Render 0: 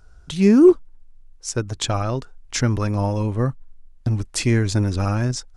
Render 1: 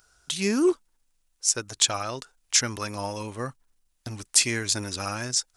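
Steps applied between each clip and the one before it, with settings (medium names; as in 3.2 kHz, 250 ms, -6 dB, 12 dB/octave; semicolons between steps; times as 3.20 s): tilt EQ +4 dB/octave; trim -4 dB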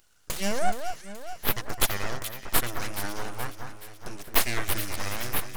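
full-wave rectifier; echo whose repeats swap between lows and highs 212 ms, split 1.9 kHz, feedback 72%, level -7 dB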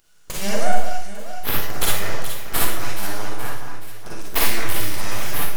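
Schroeder reverb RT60 0.5 s, DRR -3.5 dB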